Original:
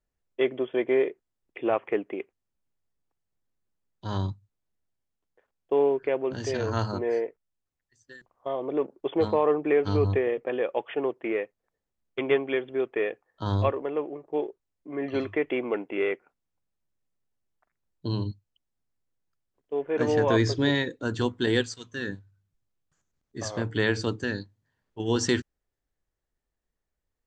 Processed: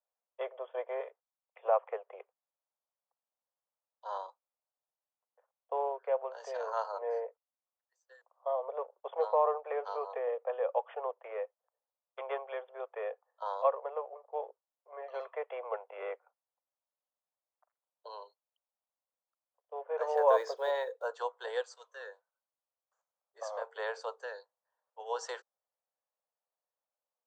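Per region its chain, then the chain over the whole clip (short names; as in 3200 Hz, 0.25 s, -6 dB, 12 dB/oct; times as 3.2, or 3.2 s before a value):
1–1.65 Bessel high-pass 750 Hz + mismatched tape noise reduction decoder only
20.15–21.1 block floating point 7-bit + low shelf 430 Hz +11 dB
whole clip: steep high-pass 490 Hz 72 dB/oct; resonant high shelf 1500 Hz -11.5 dB, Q 1.5; gain -3 dB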